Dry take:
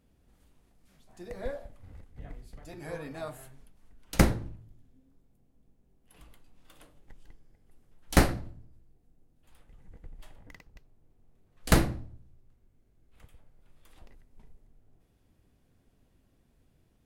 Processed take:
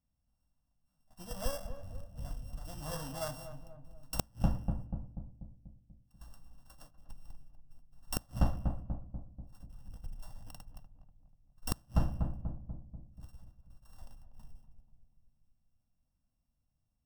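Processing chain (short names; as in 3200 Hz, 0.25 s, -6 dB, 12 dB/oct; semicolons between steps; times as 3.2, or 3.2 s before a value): sample sorter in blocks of 16 samples; gate -54 dBFS, range -18 dB; fixed phaser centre 950 Hz, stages 4; on a send: darkening echo 0.243 s, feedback 58%, low-pass 810 Hz, level -8.5 dB; on the sum: flipped gate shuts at -18 dBFS, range -39 dB; gain +3.5 dB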